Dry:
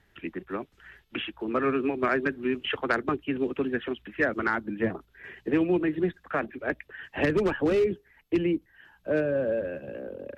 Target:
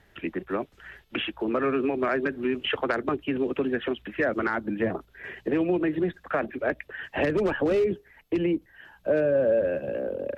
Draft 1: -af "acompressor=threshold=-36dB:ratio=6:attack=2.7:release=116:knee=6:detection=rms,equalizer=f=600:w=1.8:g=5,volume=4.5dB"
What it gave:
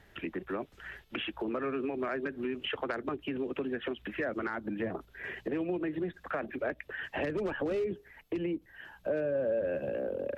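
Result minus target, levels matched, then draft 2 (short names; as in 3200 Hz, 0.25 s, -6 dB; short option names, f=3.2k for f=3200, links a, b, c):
compressor: peak gain reduction +9 dB
-af "acompressor=threshold=-25.5dB:ratio=6:attack=2.7:release=116:knee=6:detection=rms,equalizer=f=600:w=1.8:g=5,volume=4.5dB"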